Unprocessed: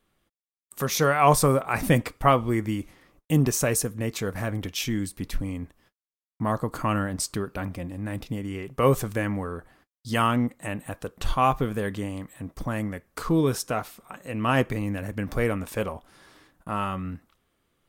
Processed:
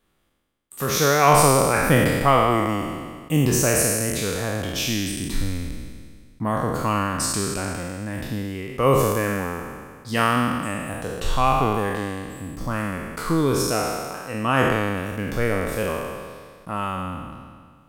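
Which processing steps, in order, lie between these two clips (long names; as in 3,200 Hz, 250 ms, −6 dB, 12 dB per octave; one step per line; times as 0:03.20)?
peak hold with a decay on every bin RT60 1.82 s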